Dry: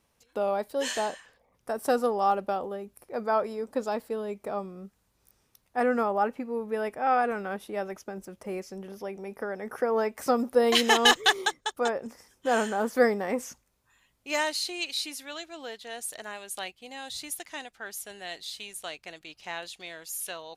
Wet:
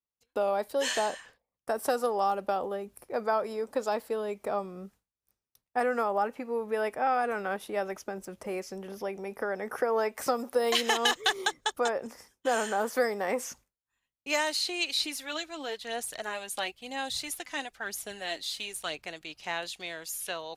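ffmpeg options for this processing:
ffmpeg -i in.wav -filter_complex "[0:a]asettb=1/sr,asplit=3[link_01][link_02][link_03];[link_01]atrim=end=15.004[link_04];[link_02]atrim=start=15:end=19.06,asetpts=PTS-STARTPTS,afade=type=in:duration=0.004:curve=qsin,afade=type=out:start_time=4.056:duration=0.004:curve=qsin,aphaser=in_gain=1:out_gain=1:delay=4:decay=0.4:speed=1:type=sinusoidal[link_05];[link_03]atrim=start=19.056[link_06];[link_04][link_05]acrossfade=duration=0.004:curve1=hsin:curve2=qsin[link_07];[link_07][link_06]acrossfade=duration=0.004:curve1=qsin:curve2=hsin,acrossover=split=390|4800[link_08][link_09][link_10];[link_08]acompressor=threshold=-45dB:ratio=4[link_11];[link_09]acompressor=threshold=-28dB:ratio=4[link_12];[link_10]acompressor=threshold=-39dB:ratio=4[link_13];[link_11][link_12][link_13]amix=inputs=3:normalize=0,agate=range=-33dB:threshold=-52dB:ratio=3:detection=peak,volume=3dB" out.wav

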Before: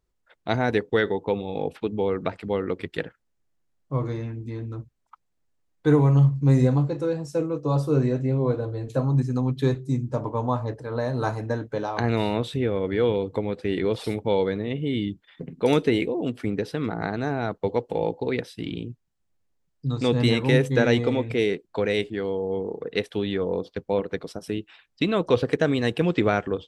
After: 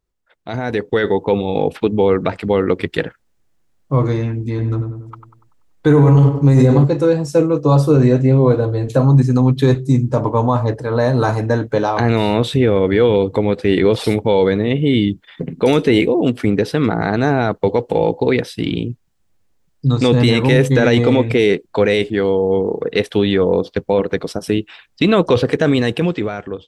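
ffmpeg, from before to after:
ffmpeg -i in.wav -filter_complex "[0:a]asettb=1/sr,asplit=3[link_01][link_02][link_03];[link_01]atrim=end=4.494[link_04];[link_02]atrim=start=4.49:end=6.84,asetpts=PTS-STARTPTS,afade=type=in:duration=0.004:curve=qsin,afade=type=out:start_time=2.346:duration=0.004:curve=qsin,asplit=2[link_05][link_06];[link_06]adelay=96,lowpass=frequency=1500:poles=1,volume=-6dB,asplit=2[link_07][link_08];[link_08]adelay=96,lowpass=frequency=1500:poles=1,volume=0.54,asplit=2[link_09][link_10];[link_10]adelay=96,lowpass=frequency=1500:poles=1,volume=0.54,asplit=2[link_11][link_12];[link_12]adelay=96,lowpass=frequency=1500:poles=1,volume=0.54,asplit=2[link_13][link_14];[link_14]adelay=96,lowpass=frequency=1500:poles=1,volume=0.54,asplit=2[link_15][link_16];[link_16]adelay=96,lowpass=frequency=1500:poles=1,volume=0.54,asplit=2[link_17][link_18];[link_18]adelay=96,lowpass=frequency=1500:poles=1,volume=0.54[link_19];[link_05][link_07][link_09][link_11][link_13][link_15][link_17][link_19]amix=inputs=8:normalize=0,atrim=end_sample=103635[link_20];[link_03]atrim=start=6.836[link_21];[link_04][link_20]acrossfade=duration=0.004:curve1=hsin:curve2=qsin[link_22];[link_22][link_21]acrossfade=duration=0.004:curve1=qsin:curve2=hsin,alimiter=limit=-15.5dB:level=0:latency=1:release=12,dynaudnorm=framelen=150:gausssize=11:maxgain=12.5dB" out.wav

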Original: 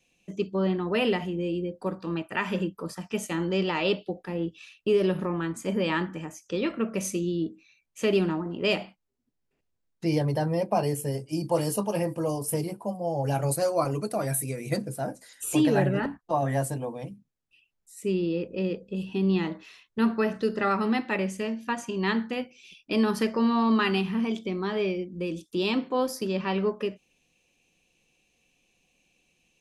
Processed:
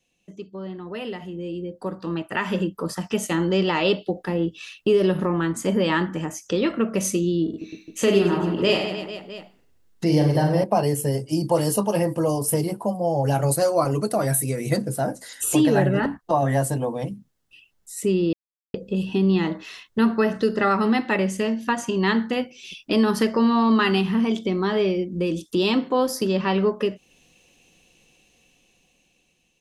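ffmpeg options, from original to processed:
ffmpeg -i in.wav -filter_complex "[0:a]asettb=1/sr,asplit=3[link_01][link_02][link_03];[link_01]atrim=end=7.444[link_04];[link_02]atrim=start=7.44:end=10.64,asetpts=PTS-STARTPTS,afade=type=in:duration=0.004:curve=qsin,afade=type=out:start_time=3.196:duration=0.004:curve=qsin,aecho=1:1:40|96|174.4|284.2|437.8|653:0.631|0.398|0.251|0.158|0.1|0.0631,atrim=end_sample=141120[link_05];[link_03]atrim=start=10.636[link_06];[link_04][link_05]acrossfade=duration=0.004:curve1=hsin:curve2=qsin[link_07];[link_07][link_06]acrossfade=duration=0.004:curve1=qsin:curve2=hsin,asplit=3[link_08][link_09][link_10];[link_08]atrim=end=18.33,asetpts=PTS-STARTPTS,afade=type=out:start_time=18.326:duration=0.004:curve=hsin[link_11];[link_09]atrim=start=18.33:end=18.74,asetpts=PTS-STARTPTS,volume=0[link_12];[link_10]atrim=start=18.74,asetpts=PTS-STARTPTS,afade=type=in:duration=0.004:curve=hsin[link_13];[link_11][link_12][link_13]concat=n=3:v=0:a=1,acompressor=threshold=-42dB:ratio=1.5,bandreject=frequency=2400:width=11,dynaudnorm=framelen=580:gausssize=7:maxgain=14.5dB,volume=-2dB" out.wav

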